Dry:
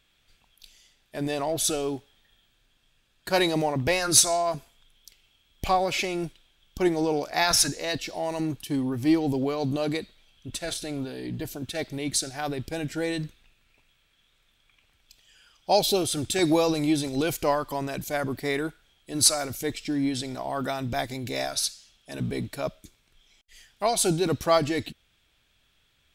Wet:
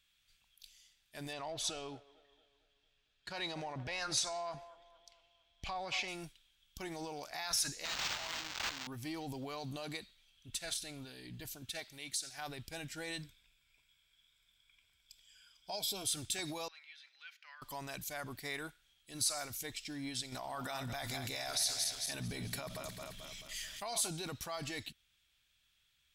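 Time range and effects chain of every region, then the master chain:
0:01.33–0:06.08: low-pass filter 4,900 Hz + delay with a band-pass on its return 227 ms, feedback 49%, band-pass 760 Hz, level −16.5 dB
0:07.85–0:08.87: spike at every zero crossing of −23 dBFS + spectral tilt +3.5 dB per octave + linearly interpolated sample-rate reduction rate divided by 4×
0:11.79–0:12.38: low-shelf EQ 370 Hz −9.5 dB + downward compressor 4 to 1, threshold −28 dBFS
0:13.22–0:16.06: EQ curve with evenly spaced ripples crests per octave 1.7, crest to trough 9 dB + downward compressor 2 to 1, threshold −29 dBFS
0:16.68–0:17.62: four-pole ladder high-pass 1,400 Hz, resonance 45% + high-frequency loss of the air 280 metres
0:20.32–0:24.09: feedback delay that plays each chunk backwards 109 ms, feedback 66%, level −11.5 dB + envelope flattener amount 50%
whole clip: dynamic equaliser 820 Hz, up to +6 dB, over −38 dBFS, Q 1; brickwall limiter −17.5 dBFS; guitar amp tone stack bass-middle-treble 5-5-5; level +1 dB

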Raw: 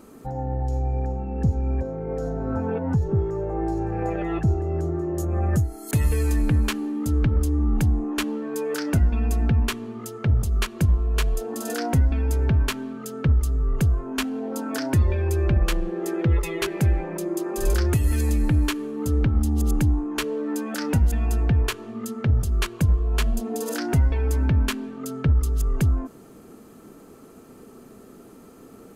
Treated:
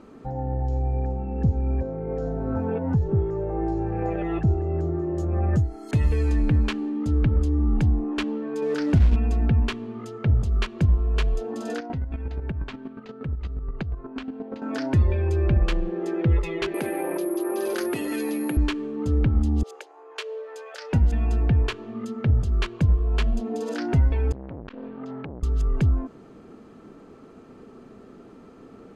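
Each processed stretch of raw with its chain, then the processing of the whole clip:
0:08.62–0:09.16: low-shelf EQ 260 Hz +8.5 dB + downward compressor, threshold −13 dBFS + log-companded quantiser 6 bits
0:11.78–0:14.62: square-wave tremolo 8.4 Hz, depth 65%, duty 20% + downward compressor 4 to 1, threshold −25 dBFS + linearly interpolated sample-rate reduction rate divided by 4×
0:16.74–0:18.57: high-pass filter 260 Hz 24 dB per octave + bad sample-rate conversion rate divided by 4×, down filtered, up zero stuff + envelope flattener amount 70%
0:19.63–0:20.93: Butterworth high-pass 420 Hz 72 dB per octave + parametric band 1,000 Hz −6.5 dB 2.4 octaves
0:24.32–0:25.43: downward compressor 10 to 1, threshold −28 dBFS + high-frequency loss of the air 170 metres + saturating transformer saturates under 660 Hz
whole clip: low-pass filter 3,800 Hz 12 dB per octave; dynamic equaliser 1,400 Hz, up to −3 dB, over −42 dBFS, Q 1

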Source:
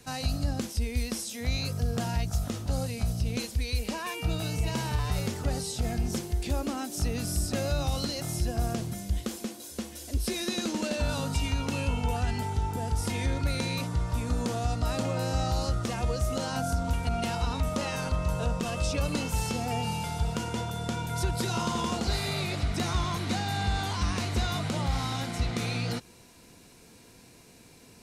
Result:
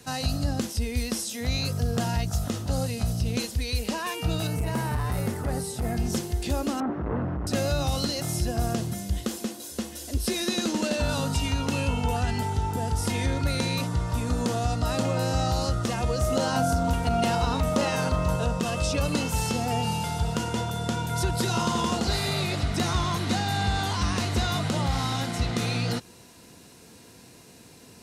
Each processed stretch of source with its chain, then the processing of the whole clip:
0:04.47–0:05.97: hard clipping −24 dBFS + flat-topped bell 4,400 Hz −8.5 dB
0:06.80–0:07.47: sign of each sample alone + low-pass filter 1,400 Hz 24 dB per octave
0:16.18–0:18.36: parametric band 550 Hz +3.5 dB 2.8 octaves + floating-point word with a short mantissa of 6 bits + double-tracking delay 39 ms −14 dB
whole clip: high-pass filter 64 Hz; notch filter 2,300 Hz, Q 15; level +4 dB

